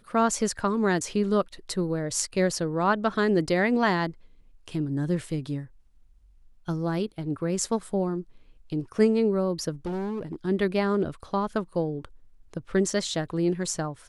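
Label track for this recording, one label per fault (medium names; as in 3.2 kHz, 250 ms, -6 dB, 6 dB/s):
9.860000	10.360000	clipped -27.5 dBFS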